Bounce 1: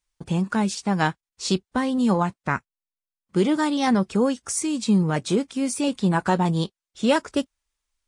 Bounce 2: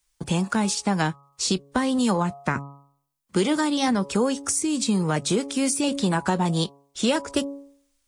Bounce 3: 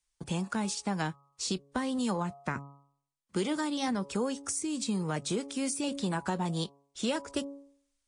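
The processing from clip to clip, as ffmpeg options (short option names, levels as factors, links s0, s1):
-filter_complex "[0:a]highshelf=f=5600:g=8.5,bandreject=f=140.1:t=h:w=4,bandreject=f=280.2:t=h:w=4,bandreject=f=420.3:t=h:w=4,bandreject=f=560.4:t=h:w=4,bandreject=f=700.5:t=h:w=4,bandreject=f=840.6:t=h:w=4,bandreject=f=980.7:t=h:w=4,bandreject=f=1120.8:t=h:w=4,bandreject=f=1260.9:t=h:w=4,acrossover=split=120|470[s0][s1][s2];[s0]acompressor=threshold=0.00631:ratio=4[s3];[s1]acompressor=threshold=0.0316:ratio=4[s4];[s2]acompressor=threshold=0.0316:ratio=4[s5];[s3][s4][s5]amix=inputs=3:normalize=0,volume=1.88"
-af "aresample=22050,aresample=44100,volume=0.355"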